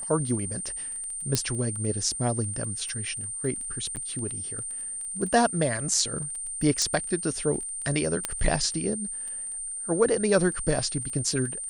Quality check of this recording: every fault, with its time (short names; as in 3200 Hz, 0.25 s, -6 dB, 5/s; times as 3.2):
crackle 16/s -34 dBFS
tone 8900 Hz -32 dBFS
1.35 pop -8 dBFS
3.96–3.97 gap 8.5 ms
6.82 pop -11 dBFS
8.25 pop -10 dBFS